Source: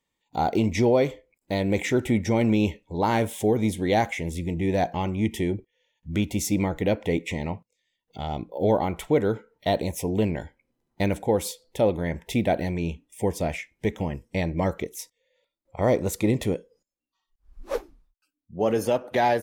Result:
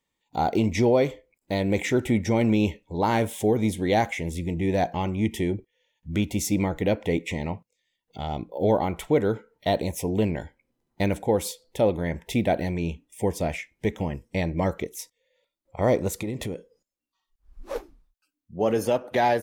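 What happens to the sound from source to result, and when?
16.08–17.76 s: compression, threshold -27 dBFS

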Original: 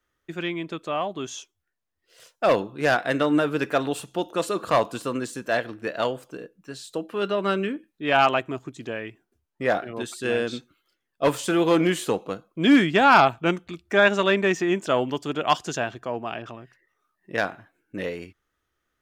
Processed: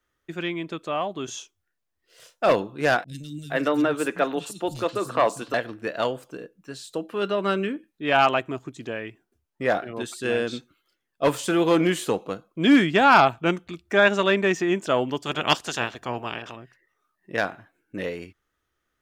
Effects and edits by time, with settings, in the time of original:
1.25–2.52 s: doubling 32 ms -7 dB
3.04–5.54 s: three bands offset in time lows, highs, mids 40/460 ms, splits 190/4200 Hz
15.25–16.55 s: spectral peaks clipped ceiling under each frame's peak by 16 dB

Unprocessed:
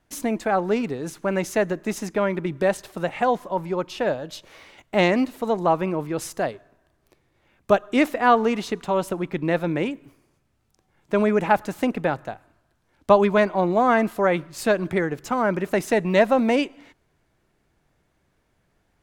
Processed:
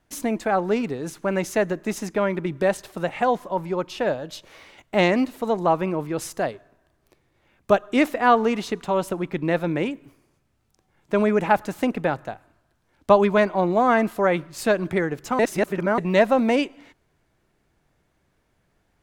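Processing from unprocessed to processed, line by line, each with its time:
15.39–15.98 s: reverse

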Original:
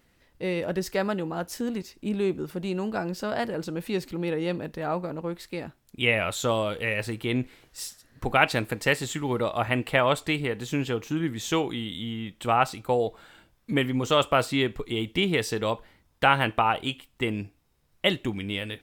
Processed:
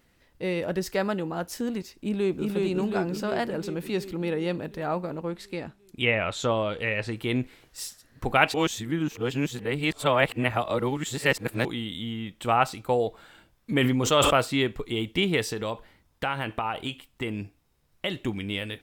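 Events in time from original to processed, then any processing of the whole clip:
1.96–2.48 s: echo throw 360 ms, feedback 65%, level -1.5 dB
5.29–7.16 s: low-pass that closes with the level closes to 2.9 kHz, closed at -20.5 dBFS
8.54–11.65 s: reverse
13.73–14.37 s: decay stretcher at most 20 dB/s
15.42–18.17 s: compression 2.5:1, threshold -27 dBFS

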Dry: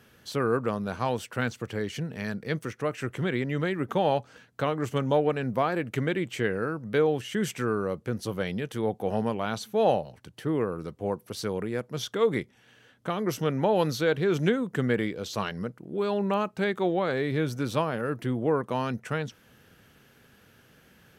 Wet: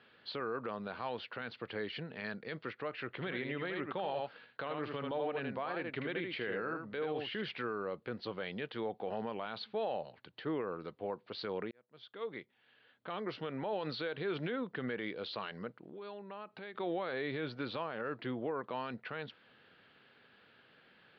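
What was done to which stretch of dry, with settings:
3.13–7.43 s: delay 78 ms -7 dB
11.71–13.70 s: fade in
15.89–16.75 s: compression 8:1, threshold -37 dBFS
whole clip: high-pass 520 Hz 6 dB/octave; peak limiter -25.5 dBFS; steep low-pass 4.5 kHz 72 dB/octave; trim -2.5 dB

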